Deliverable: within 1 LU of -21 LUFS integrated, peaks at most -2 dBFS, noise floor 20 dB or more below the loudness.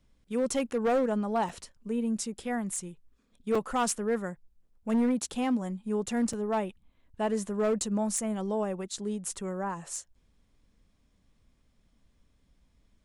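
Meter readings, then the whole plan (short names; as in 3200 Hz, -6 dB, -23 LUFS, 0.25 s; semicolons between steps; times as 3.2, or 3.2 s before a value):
clipped 1.2%; flat tops at -21.5 dBFS; dropouts 3; longest dropout 4.1 ms; loudness -31.0 LUFS; peak -21.5 dBFS; loudness target -21.0 LUFS
-> clip repair -21.5 dBFS; interpolate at 1.49/3.55/6.33, 4.1 ms; gain +10 dB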